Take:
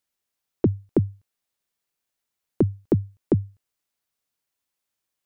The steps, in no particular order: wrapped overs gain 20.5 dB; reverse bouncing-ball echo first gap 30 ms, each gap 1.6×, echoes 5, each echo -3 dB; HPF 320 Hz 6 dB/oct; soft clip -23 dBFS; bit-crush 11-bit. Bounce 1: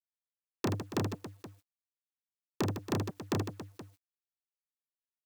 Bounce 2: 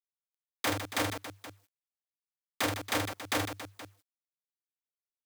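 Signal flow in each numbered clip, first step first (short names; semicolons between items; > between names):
soft clip > HPF > wrapped overs > reverse bouncing-ball echo > bit-crush; wrapped overs > soft clip > reverse bouncing-ball echo > bit-crush > HPF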